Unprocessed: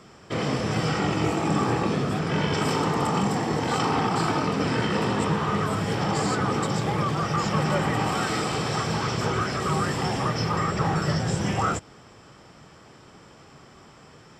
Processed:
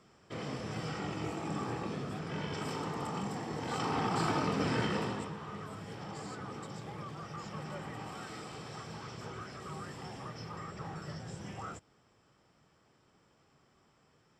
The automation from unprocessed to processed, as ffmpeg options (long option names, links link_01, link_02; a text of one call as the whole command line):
ffmpeg -i in.wav -af "volume=-7dB,afade=type=in:start_time=3.53:duration=0.73:silence=0.473151,afade=type=out:start_time=4.83:duration=0.48:silence=0.266073" out.wav